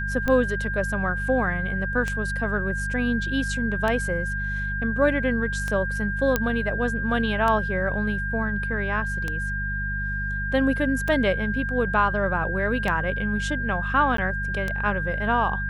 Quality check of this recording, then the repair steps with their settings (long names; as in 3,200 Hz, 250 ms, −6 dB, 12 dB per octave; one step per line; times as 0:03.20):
mains hum 50 Hz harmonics 4 −30 dBFS
scratch tick 33 1/3 rpm −13 dBFS
whistle 1,600 Hz −28 dBFS
0:06.36: click −7 dBFS
0:14.17–0:14.18: drop-out 13 ms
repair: click removal
hum removal 50 Hz, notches 4
notch filter 1,600 Hz, Q 30
repair the gap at 0:14.17, 13 ms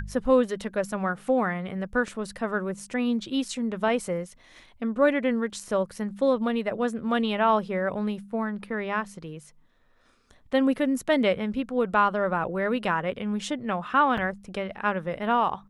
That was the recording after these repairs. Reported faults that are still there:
none of them is left